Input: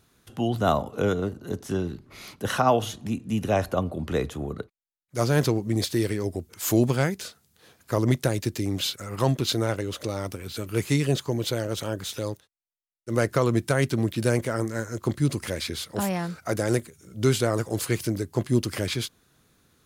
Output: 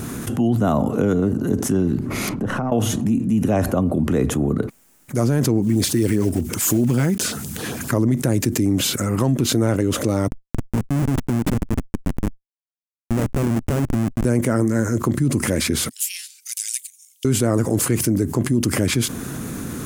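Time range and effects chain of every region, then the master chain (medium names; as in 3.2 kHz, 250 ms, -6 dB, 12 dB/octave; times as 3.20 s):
2.29–2.72 s: partial rectifier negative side -3 dB + low-pass 1 kHz 6 dB/octave + compression, threshold -38 dBFS
5.62–7.94 s: block-companded coder 5-bit + peaking EQ 2.8 kHz +3.5 dB 2 oct + LFO notch sine 7.7 Hz 430–2300 Hz
10.28–14.25 s: Schmitt trigger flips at -24 dBFS + upward expansion 2.5:1, over -38 dBFS
15.89–17.25 s: steep high-pass 2.8 kHz + upward expansion 2.5:1, over -52 dBFS
whole clip: ten-band graphic EQ 125 Hz +4 dB, 250 Hz +10 dB, 4 kHz -9 dB, 8 kHz +4 dB; peak limiter -10.5 dBFS; level flattener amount 70%; trim -1 dB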